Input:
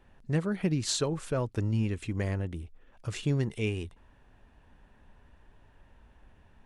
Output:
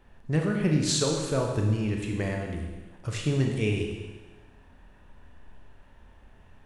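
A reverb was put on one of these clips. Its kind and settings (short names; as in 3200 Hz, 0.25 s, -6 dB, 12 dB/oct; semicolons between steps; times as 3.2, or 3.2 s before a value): Schroeder reverb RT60 1.3 s, combs from 26 ms, DRR 1 dB; gain +2 dB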